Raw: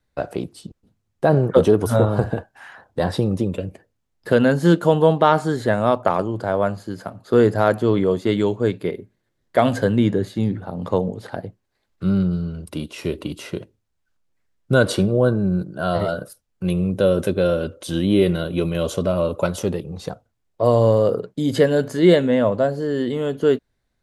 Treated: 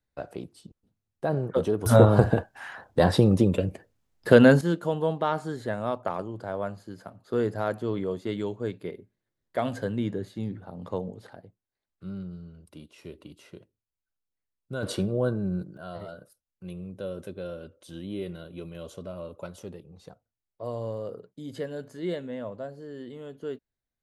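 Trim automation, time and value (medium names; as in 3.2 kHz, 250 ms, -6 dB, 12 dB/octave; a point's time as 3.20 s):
-11 dB
from 1.86 s +1 dB
from 4.61 s -11.5 dB
from 11.33 s -18 dB
from 14.83 s -9 dB
from 15.77 s -18 dB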